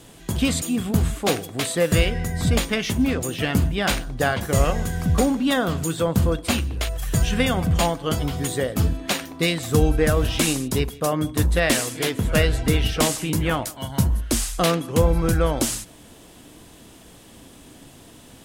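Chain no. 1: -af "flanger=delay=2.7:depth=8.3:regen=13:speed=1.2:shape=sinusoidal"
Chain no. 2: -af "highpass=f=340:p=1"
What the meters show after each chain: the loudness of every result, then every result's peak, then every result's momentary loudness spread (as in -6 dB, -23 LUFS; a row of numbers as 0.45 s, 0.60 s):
-26.0 LUFS, -25.0 LUFS; -6.5 dBFS, -5.5 dBFS; 5 LU, 6 LU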